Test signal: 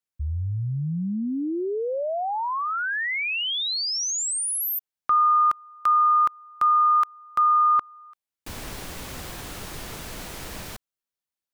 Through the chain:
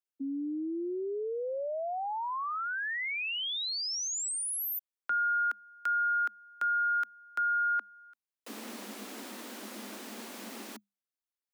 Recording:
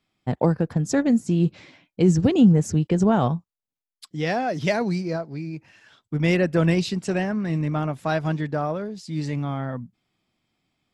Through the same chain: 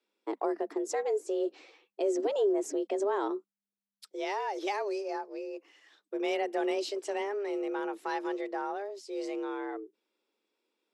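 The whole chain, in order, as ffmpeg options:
ffmpeg -i in.wav -af "acompressor=threshold=-24dB:ratio=1.5:attack=1.4:release=84:knee=1:detection=peak,afreqshift=200,volume=-7.5dB" out.wav

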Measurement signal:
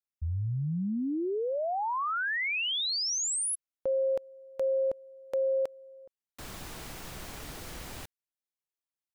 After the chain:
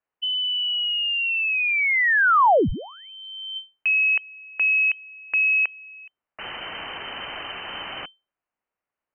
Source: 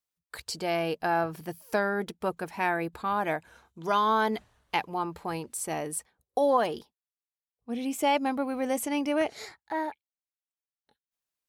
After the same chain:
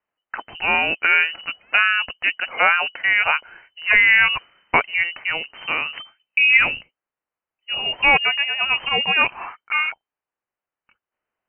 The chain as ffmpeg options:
ffmpeg -i in.wav -af "crystalizer=i=9:c=0,aeval=exprs='1.68*(cos(1*acos(clip(val(0)/1.68,-1,1)))-cos(1*PI/2))+0.15*(cos(2*acos(clip(val(0)/1.68,-1,1)))-cos(2*PI/2))+0.075*(cos(5*acos(clip(val(0)/1.68,-1,1)))-cos(5*PI/2))+0.0266*(cos(7*acos(clip(val(0)/1.68,-1,1)))-cos(7*PI/2))':channel_layout=same,lowpass=frequency=2600:width_type=q:width=0.5098,lowpass=frequency=2600:width_type=q:width=0.6013,lowpass=frequency=2600:width_type=q:width=0.9,lowpass=frequency=2600:width_type=q:width=2.563,afreqshift=-3100,volume=5dB" out.wav

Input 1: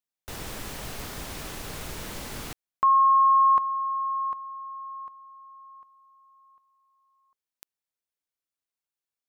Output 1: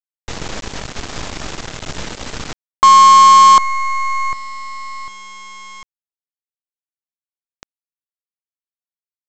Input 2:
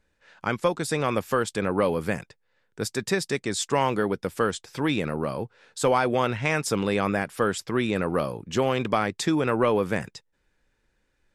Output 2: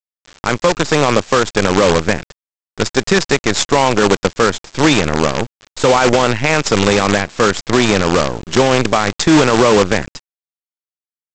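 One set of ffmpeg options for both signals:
ffmpeg -i in.wav -af "aresample=16000,acrusher=bits=5:dc=4:mix=0:aa=0.000001,aresample=44100,alimiter=level_in=14.5dB:limit=-1dB:release=50:level=0:latency=1,volume=-1dB" out.wav

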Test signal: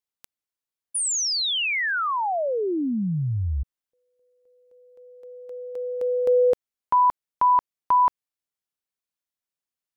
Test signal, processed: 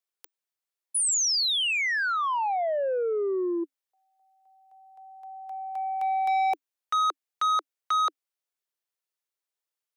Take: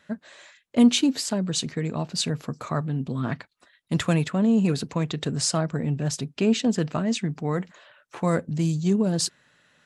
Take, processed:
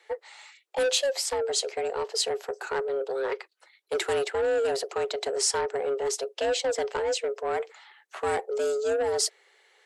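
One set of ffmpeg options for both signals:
ffmpeg -i in.wav -filter_complex "[0:a]highpass=57,afreqshift=270,acrossover=split=4700[link_01][link_02];[link_01]asoftclip=type=tanh:threshold=-22dB[link_03];[link_03][link_02]amix=inputs=2:normalize=0" out.wav

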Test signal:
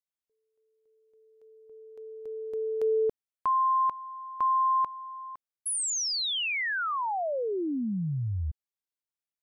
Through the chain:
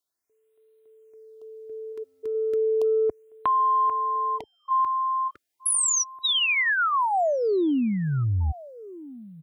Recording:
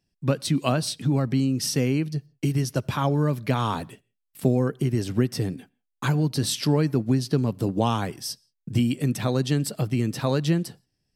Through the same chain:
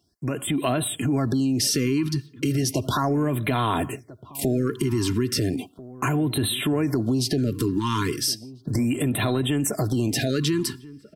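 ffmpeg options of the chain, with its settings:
ffmpeg -i in.wav -filter_complex "[0:a]highpass=74,aecho=1:1:2.9:0.55,acompressor=threshold=-34dB:ratio=6:attack=5.7:release=21:knee=6:detection=rms,asplit=2[link_01][link_02];[link_02]adelay=1341,volume=-18dB,highshelf=frequency=4000:gain=-30.2[link_03];[link_01][link_03]amix=inputs=2:normalize=0,dynaudnorm=framelen=130:gausssize=7:maxgain=3.5dB,afftfilt=real='re*(1-between(b*sr/1024,590*pow(6000/590,0.5+0.5*sin(2*PI*0.35*pts/sr))/1.41,590*pow(6000/590,0.5+0.5*sin(2*PI*0.35*pts/sr))*1.41))':imag='im*(1-between(b*sr/1024,590*pow(6000/590,0.5+0.5*sin(2*PI*0.35*pts/sr))/1.41,590*pow(6000/590,0.5+0.5*sin(2*PI*0.35*pts/sr))*1.41))':win_size=1024:overlap=0.75,volume=8.5dB" out.wav

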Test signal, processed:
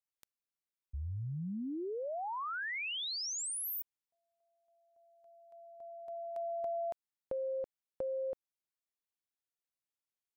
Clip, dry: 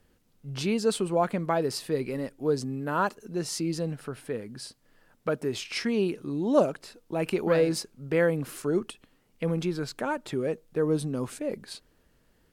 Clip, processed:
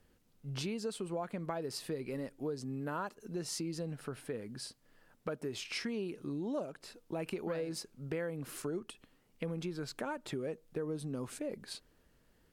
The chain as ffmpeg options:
ffmpeg -i in.wav -af "acompressor=threshold=-32dB:ratio=5,volume=-3.5dB" out.wav

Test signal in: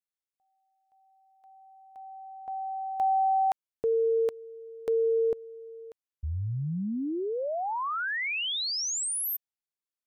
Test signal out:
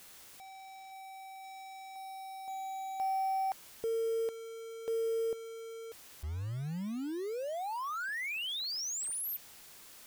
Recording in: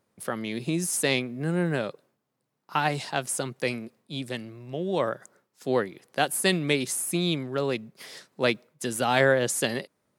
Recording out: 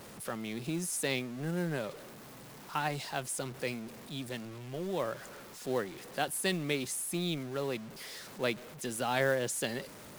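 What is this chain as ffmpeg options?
ffmpeg -i in.wav -af "aeval=exprs='val(0)+0.5*0.02*sgn(val(0))':channel_layout=same,acrusher=bits=5:mode=log:mix=0:aa=0.000001,volume=-9dB" out.wav

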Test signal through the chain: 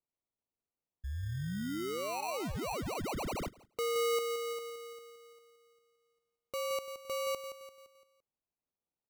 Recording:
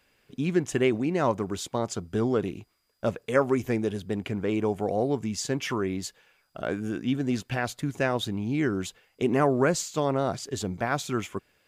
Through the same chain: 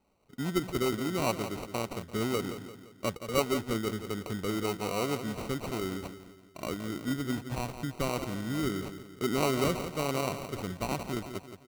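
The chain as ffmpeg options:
ffmpeg -i in.wav -filter_complex "[0:a]asplit=2[link_01][link_02];[link_02]adelay=171,lowpass=frequency=2400:poles=1,volume=-10dB,asplit=2[link_03][link_04];[link_04]adelay=171,lowpass=frequency=2400:poles=1,volume=0.48,asplit=2[link_05][link_06];[link_06]adelay=171,lowpass=frequency=2400:poles=1,volume=0.48,asplit=2[link_07][link_08];[link_08]adelay=171,lowpass=frequency=2400:poles=1,volume=0.48,asplit=2[link_09][link_10];[link_10]adelay=171,lowpass=frequency=2400:poles=1,volume=0.48[link_11];[link_01][link_03][link_05][link_07][link_09][link_11]amix=inputs=6:normalize=0,acrusher=samples=26:mix=1:aa=0.000001,volume=-5.5dB" out.wav

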